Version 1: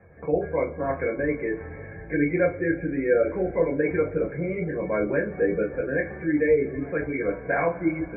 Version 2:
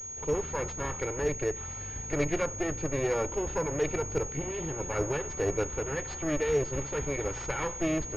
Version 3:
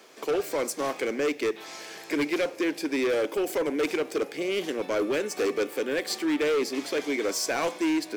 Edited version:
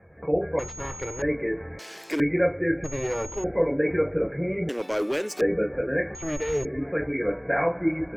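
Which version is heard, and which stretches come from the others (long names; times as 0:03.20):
1
0:00.59–0:01.22: punch in from 2
0:01.79–0:02.20: punch in from 3
0:02.84–0:03.44: punch in from 2
0:04.69–0:05.41: punch in from 3
0:06.15–0:06.65: punch in from 2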